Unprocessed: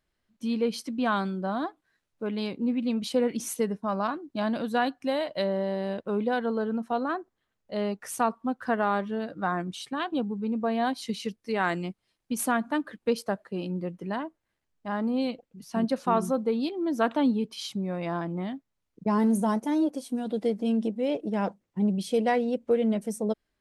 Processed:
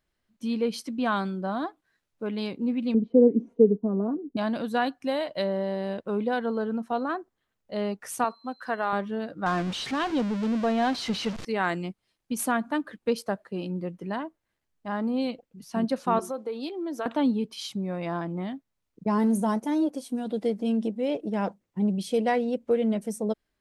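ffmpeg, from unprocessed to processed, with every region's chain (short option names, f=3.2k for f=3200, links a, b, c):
-filter_complex "[0:a]asettb=1/sr,asplit=3[a][b][c];[a]atrim=end=2.944[d];[b]atrim=start=2.94:end=4.37,asetpts=PTS-STARTPTS,afade=t=in:d=0.004:c=qsin,afade=t=out:st=1.426:d=0.004:c=qsin,lowpass=f=390:t=q:w=3,aecho=1:1:4.3:0.7,atrim=end_sample=63063[e];[c]atrim=start=4.366[f];[d][e]acrossfade=d=0.004:c1=hsin:c2=qsin[g];[g][f]acrossfade=d=0.004:c1=qsin:c2=hsin,asettb=1/sr,asplit=3[h][i][j];[h]atrim=end=8.244[k];[i]atrim=start=8.24:end=8.93,asetpts=PTS-STARTPTS,afade=t=in:d=0.004:c=qsin,afade=t=out:st=0.686:d=0.004:c=qsin,highpass=f=560:p=1,aeval=exprs='val(0)+0.00126*sin(2*PI*4100*n/s)':c=same[l];[j]atrim=start=8.926[m];[k][l]acrossfade=d=0.004:c1=hsin:c2=qsin[n];[n][m]acrossfade=d=0.004:c1=qsin:c2=hsin,asettb=1/sr,asplit=3[o][p][q];[o]atrim=end=9.464[r];[p]atrim=start=9.46:end=11.45,asetpts=PTS-STARTPTS,afade=t=in:d=0.004:c=qsin,afade=t=out:st=1.986:d=0.004:c=qsin,aeval=exprs='val(0)+0.5*0.0335*sgn(val(0))':c=same,lowpass=5.4k[s];[q]atrim=start=11.446[t];[r][s]acrossfade=d=0.004:c1=hsin:c2=qsin[u];[u][t]acrossfade=d=0.004:c1=qsin:c2=hsin,asettb=1/sr,asplit=3[v][w][x];[v]atrim=end=16.194[y];[w]atrim=start=16.19:end=17.06,asetpts=PTS-STARTPTS,afade=t=in:d=0.004:c=qsin,afade=t=out:st=0.866:d=0.004:c=qsin,highpass=f=300:w=0.5412,highpass=f=300:w=1.3066,acompressor=threshold=-29dB:ratio=3:attack=3.2:release=140:knee=1:detection=peak[z];[x]atrim=start=17.056[aa];[y][z]acrossfade=d=0.004:c1=hsin:c2=qsin[ab];[ab][aa]acrossfade=d=0.004:c1=qsin:c2=hsin"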